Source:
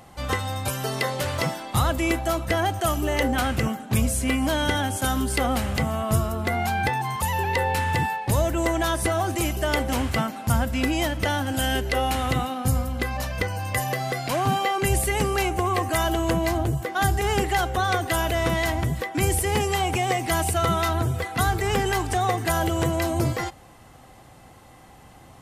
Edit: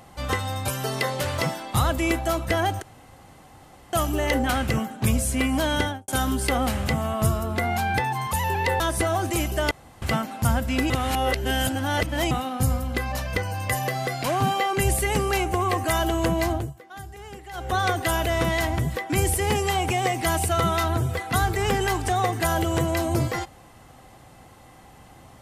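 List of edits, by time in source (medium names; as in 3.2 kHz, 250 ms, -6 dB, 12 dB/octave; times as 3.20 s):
2.82 s: insert room tone 1.11 s
4.68–4.97 s: studio fade out
7.69–8.85 s: delete
9.76–10.07 s: room tone
10.95–12.36 s: reverse
16.56–17.80 s: dip -17.5 dB, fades 0.23 s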